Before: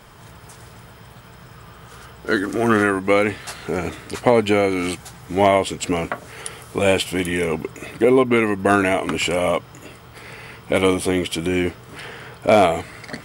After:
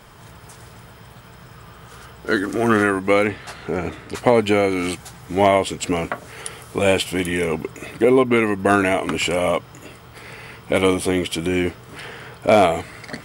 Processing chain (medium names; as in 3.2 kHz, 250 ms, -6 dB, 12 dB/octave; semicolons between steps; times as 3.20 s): 3.27–4.15 s: treble shelf 4.7 kHz -10 dB